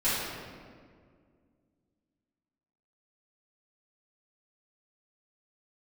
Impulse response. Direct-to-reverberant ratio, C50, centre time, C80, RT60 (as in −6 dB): −14.0 dB, −2.5 dB, 119 ms, 0.5 dB, 2.0 s